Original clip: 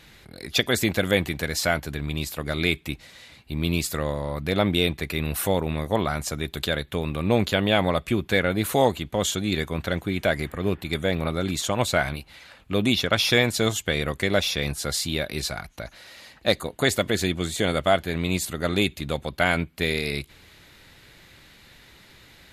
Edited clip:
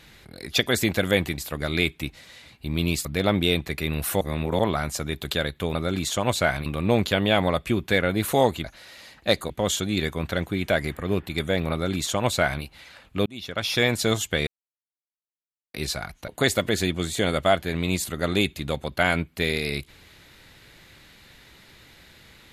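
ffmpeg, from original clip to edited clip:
-filter_complex "[0:a]asplit=13[a][b][c][d][e][f][g][h][i][j][k][l][m];[a]atrim=end=1.382[n];[b]atrim=start=2.238:end=3.912[o];[c]atrim=start=4.368:end=5.532[p];[d]atrim=start=5.528:end=5.912,asetpts=PTS-STARTPTS,areverse[q];[e]atrim=start=5.908:end=7.072[r];[f]atrim=start=11.268:end=12.182[s];[g]atrim=start=7.068:end=9.052[t];[h]atrim=start=15.828:end=16.692[u];[i]atrim=start=9.048:end=12.81,asetpts=PTS-STARTPTS,afade=t=out:st=3.758:d=0.004:c=hsin[v];[j]atrim=start=12.81:end=14.02,asetpts=PTS-STARTPTS,afade=t=in:d=0.71,afade=t=out:st=1.206:d=0.004:c=hsin[w];[k]atrim=start=14.02:end=15.29,asetpts=PTS-STARTPTS,volume=0[x];[l]atrim=start=15.29:end=15.832,asetpts=PTS-STARTPTS,afade=t=in:d=0.004:c=hsin[y];[m]atrim=start=16.688[z];[n][o]acrossfade=d=0.004:c1=hsin:c2=hsin[aa];[aa][p]acrossfade=d=0.004:c1=hsin:c2=hsin[ab];[ab][q]acrossfade=d=0.004:c1=hsin:c2=hsin[ac];[ac][r]acrossfade=d=0.004:c1=hsin:c2=hsin[ad];[ad][s]acrossfade=d=0.004:c1=hsin:c2=hsin[ae];[ae][t]acrossfade=d=0.004:c1=hsin:c2=hsin[af];[af][u]acrossfade=d=0.004:c1=hsin:c2=hsin[ag];[v][w][x][y]concat=n=4:v=0:a=1[ah];[ag][ah]acrossfade=d=0.004:c1=hsin:c2=hsin[ai];[ai][z]acrossfade=d=0.004:c1=hsin:c2=hsin"

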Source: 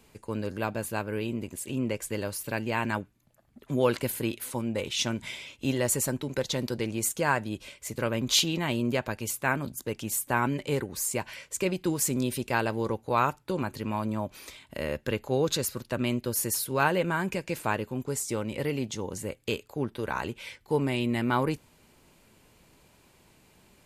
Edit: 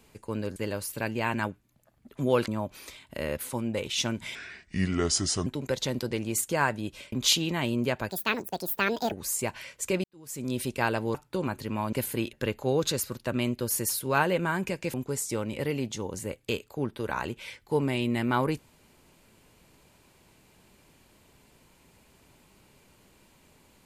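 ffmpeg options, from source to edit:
-filter_complex "[0:a]asplit=14[a][b][c][d][e][f][g][h][i][j][k][l][m][n];[a]atrim=end=0.562[o];[b]atrim=start=2.068:end=3.992[p];[c]atrim=start=14.078:end=14.982[q];[d]atrim=start=4.388:end=5.364[r];[e]atrim=start=5.36:end=6.14,asetpts=PTS-STARTPTS,asetrate=30870,aresample=44100[s];[f]atrim=start=6.136:end=7.802[t];[g]atrim=start=8.188:end=9.164[u];[h]atrim=start=9.16:end=10.84,asetpts=PTS-STARTPTS,asetrate=72324,aresample=44100[v];[i]atrim=start=10.836:end=11.76,asetpts=PTS-STARTPTS,afade=t=out:st=0.92:d=0.004:c=hsin[w];[j]atrim=start=11.76:end=12.872,asetpts=PTS-STARTPTS,afade=t=in:d=0.55:c=qua[x];[k]atrim=start=13.298:end=14.082[y];[l]atrim=start=3.988:end=4.392[z];[m]atrim=start=14.978:end=17.592[aa];[n]atrim=start=17.928[ab];[o][p]acrossfade=d=0.004:c1=hsin:c2=hsin[ac];[ac][q]acrossfade=d=0.004:c1=hsin:c2=hsin[ad];[ad][r]acrossfade=d=0.004:c1=hsin:c2=hsin[ae];[ae][s]acrossfade=d=0.004:c1=hsin:c2=hsin[af];[af][t]acrossfade=d=0.004:c1=hsin:c2=hsin[ag];[ag][u]acrossfade=d=0.004:c1=hsin:c2=hsin[ah];[ah][v]acrossfade=d=0.004:c1=hsin:c2=hsin[ai];[w][x]concat=n=2:v=0:a=1[aj];[ai][aj]acrossfade=d=0.004:c1=hsin:c2=hsin[ak];[ak][y]acrossfade=d=0.004:c1=hsin:c2=hsin[al];[al][z]acrossfade=d=0.004:c1=hsin:c2=hsin[am];[am][aa]acrossfade=d=0.004:c1=hsin:c2=hsin[an];[an][ab]acrossfade=d=0.004:c1=hsin:c2=hsin"

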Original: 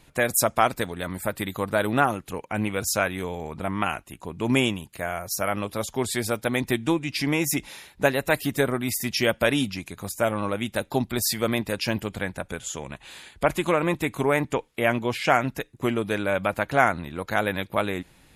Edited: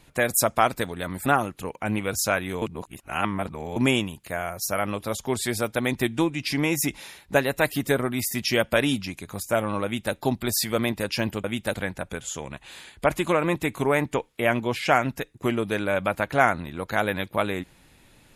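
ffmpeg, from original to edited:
-filter_complex "[0:a]asplit=6[a][b][c][d][e][f];[a]atrim=end=1.262[g];[b]atrim=start=1.948:end=3.312[h];[c]atrim=start=3.308:end=4.452,asetpts=PTS-STARTPTS,areverse[i];[d]atrim=start=4.448:end=12.132[j];[e]atrim=start=10.528:end=10.832[k];[f]atrim=start=12.128[l];[g][h]acrossfade=d=0.004:c1=hsin:c2=hsin[m];[m][i]acrossfade=d=0.004:c1=hsin:c2=hsin[n];[n][j]acrossfade=d=0.004:c1=hsin:c2=hsin[o];[o][k]acrossfade=d=0.004:c1=hsin:c2=hsin[p];[p][l]acrossfade=d=0.004:c1=hsin:c2=hsin"

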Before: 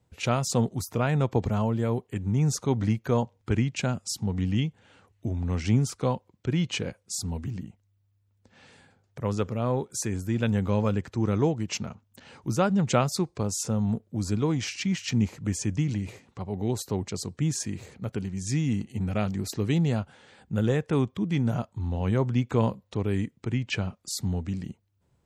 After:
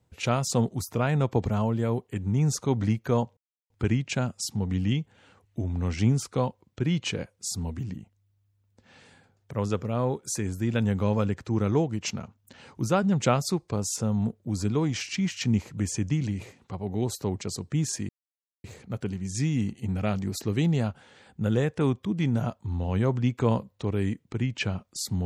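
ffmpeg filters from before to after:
-filter_complex "[0:a]asplit=3[a][b][c];[a]atrim=end=3.37,asetpts=PTS-STARTPTS,afade=t=out:st=3.366:d=0.004:c=hsin,apad=pad_dur=0.33[d];[b]atrim=start=3.37:end=17.76,asetpts=PTS-STARTPTS,afade=t=in:d=0.004:c=hsin,afade=t=out:st=14.386:d=0.004:c=hsin,apad=pad_dur=0.55[e];[c]atrim=start=17.76,asetpts=PTS-STARTPTS,afade=t=in:d=0.004:c=hsin[f];[d][e][f]concat=n=3:v=0:a=1"

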